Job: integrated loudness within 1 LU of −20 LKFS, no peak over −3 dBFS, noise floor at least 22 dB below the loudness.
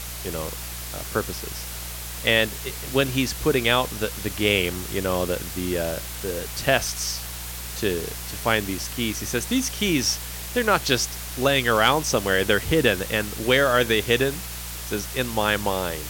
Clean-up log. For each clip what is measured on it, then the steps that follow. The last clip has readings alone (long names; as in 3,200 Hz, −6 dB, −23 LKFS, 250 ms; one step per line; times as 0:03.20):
mains hum 60 Hz; hum harmonics up to 180 Hz; level of the hum −36 dBFS; background noise floor −34 dBFS; target noise floor −46 dBFS; integrated loudness −23.5 LKFS; sample peak −4.0 dBFS; target loudness −20.0 LKFS
→ hum removal 60 Hz, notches 3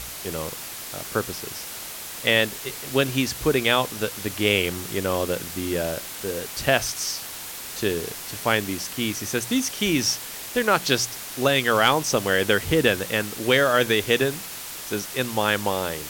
mains hum none found; background noise floor −36 dBFS; target noise floor −46 dBFS
→ broadband denoise 10 dB, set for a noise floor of −36 dBFS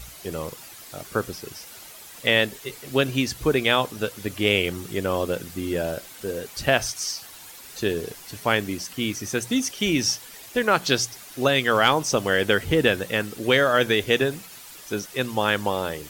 background noise floor −44 dBFS; target noise floor −46 dBFS
→ broadband denoise 6 dB, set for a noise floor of −44 dBFS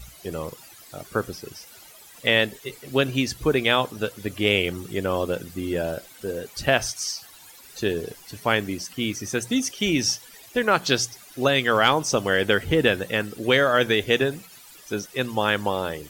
background noise floor −48 dBFS; integrated loudness −23.5 LKFS; sample peak −4.0 dBFS; target loudness −20.0 LKFS
→ level +3.5 dB
brickwall limiter −3 dBFS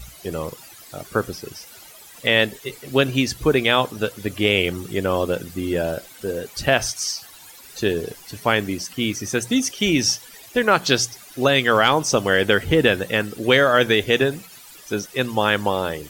integrated loudness −20.5 LKFS; sample peak −3.0 dBFS; background noise floor −44 dBFS